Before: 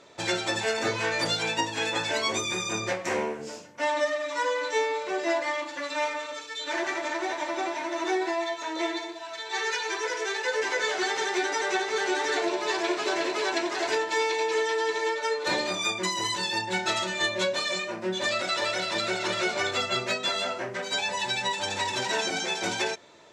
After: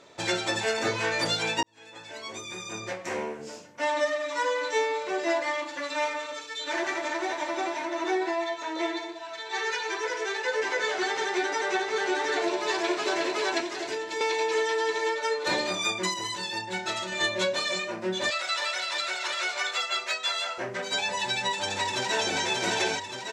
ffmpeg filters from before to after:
-filter_complex "[0:a]asettb=1/sr,asplit=3[a][b][c];[a]atrim=end=7.854[d];[b]atrim=start=7.85:end=12.41,asetpts=PTS-STARTPTS,afade=t=in:d=0.004:c=qsin,afade=t=out:st=4.556:d=0.004:c=qsin,highshelf=f=5.1k:g=-6[e];[c]atrim=start=12.406[f];[d][e]acrossfade=d=0.004:c1=hsin:c2=qsin[g];[g][f]acrossfade=d=0.004:c1=qsin:c2=hsin,asettb=1/sr,asplit=3[h][i][j];[h]atrim=end=13.604[k];[i]atrim=start=13.6:end=14.21,asetpts=PTS-STARTPTS,afade=t=in:d=0.004:c=qsin,afade=t=out:st=0.606:d=0.004:c=qsin,acrossover=split=500|1800[l][m][n];[l]acompressor=threshold=-33dB:ratio=4[o];[m]acompressor=threshold=-41dB:ratio=4[p];[n]acompressor=threshold=-37dB:ratio=4[q];[o][p][q]amix=inputs=3:normalize=0[r];[j]atrim=start=14.206[s];[k][r]acrossfade=d=0.004:c1=hsin:c2=qsin[t];[t][s]acrossfade=d=0.004:c1=qsin:c2=hsin,asettb=1/sr,asplit=3[u][v][w];[u]atrim=end=18.304[x];[v]atrim=start=18.3:end=20.58,asetpts=PTS-STARTPTS,afade=t=in:d=0.004:c=qsin,afade=t=out:st=2.276:d=0.004:c=qsin,highpass=880[y];[w]atrim=start=20.576[z];[x][y]acrossfade=d=0.004:c1=hsin:c2=qsin[aa];[aa][z]acrossfade=d=0.004:c1=qsin:c2=hsin,asplit=2[ab][ac];[ac]afade=t=in:st=21.52:d=0.01,afade=t=out:st=22.41:d=0.01,aecho=0:1:580|1160|1740|2320|2900|3480|4060|4640|5220:0.668344|0.401006|0.240604|0.144362|0.0866174|0.0519704|0.0311823|0.0187094|0.0112256[ad];[ab][ad]amix=inputs=2:normalize=0,asplit=4[ae][af][ag][ah];[ae]atrim=end=1.63,asetpts=PTS-STARTPTS,afade=t=out:st=1.626:d=0.004:c=hsin[ai];[af]atrim=start=1.63:end=16.142,asetpts=PTS-STARTPTS,afade=t=in:d=2.39[aj];[ag]atrim=start=16.138:end=17.122,asetpts=PTS-STARTPTS,volume=-4dB[ak];[ah]atrim=start=17.118[al];[ai][aj]concat=n=2:v=0:a=1[am];[am][ak]acrossfade=d=0.004:c1=hsin:c2=hsin[an];[an][al]acrossfade=d=0.004:c1=hsin:c2=hsin"

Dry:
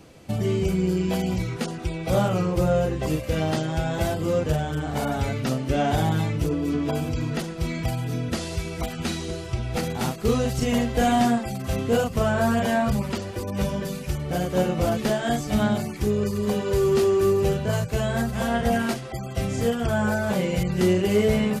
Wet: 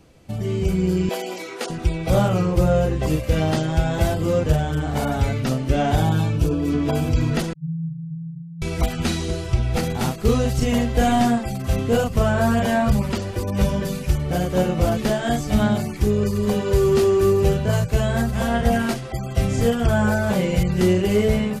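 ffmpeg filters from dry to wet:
-filter_complex "[0:a]asettb=1/sr,asplit=3[a][b][c];[a]atrim=end=1.094[d];[b]atrim=start=1.09:end=1.7,asetpts=PTS-STARTPTS,afade=t=in:d=0.004:c=qsin,afade=t=out:st=0.606:d=0.004:c=qsin,highpass=f=350:w=0.5412,highpass=f=350:w=1.3066[e];[c]atrim=start=1.696[f];[d][e]acrossfade=d=0.004:c1=hsin:c2=qsin[g];[g][f]acrossfade=d=0.004:c1=qsin:c2=hsin,asettb=1/sr,asplit=3[h][i][j];[h]atrim=end=5.984[k];[i]atrim=start=5.98:end=6.6,asetpts=PTS-STARTPTS,afade=t=in:d=0.004:c=qsin,afade=t=out:st=0.616:d=0.004:c=qsin,asuperstop=centerf=2000:order=8:qfactor=7.4[l];[j]atrim=start=6.596[m];[k][l]acrossfade=d=0.004:c1=hsin:c2=qsin[n];[n][m]acrossfade=d=0.004:c1=qsin:c2=hsin,asettb=1/sr,asplit=3[o][p][q];[o]atrim=end=7.534[r];[p]atrim=start=7.53:end=8.62,asetpts=PTS-STARTPTS,afade=t=in:d=0.004:c=qsin,afade=t=out:st=1.086:d=0.004:c=qsin,asuperpass=centerf=150:order=12:qfactor=4.8[s];[q]atrim=start=8.616[t];[r][s]acrossfade=d=0.004:c1=hsin:c2=qsin[u];[u][t]acrossfade=d=0.004:c1=qsin:c2=hsin,lowshelf=f=66:g=11.5,dynaudnorm=f=240:g=5:m=11.5dB,volume=-5dB"

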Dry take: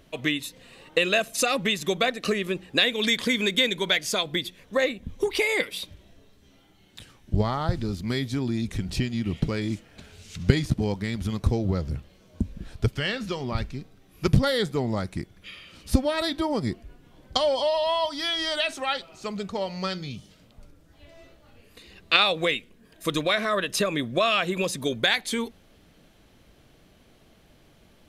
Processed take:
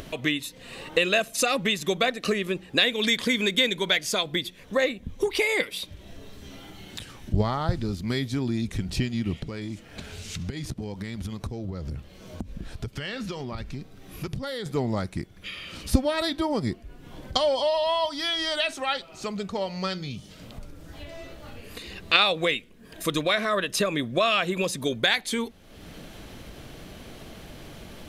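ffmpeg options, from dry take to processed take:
-filter_complex "[0:a]asettb=1/sr,asplit=3[a][b][c];[a]atrim=end=9.414[d];[b]atrim=start=9.41:end=14.66,asetpts=PTS-STARTPTS,afade=t=in:d=0.004:c=qsin,afade=t=out:st=5.246:d=0.004:c=qsin,acompressor=threshold=-30dB:ratio=5:attack=3.2:release=140:knee=1:detection=peak[e];[c]atrim=start=14.656[f];[d][e]acrossfade=d=0.004:c1=hsin:c2=qsin[g];[g][f]acrossfade=d=0.004:c1=qsin:c2=hsin,acompressor=mode=upward:threshold=-29dB:ratio=2.5"

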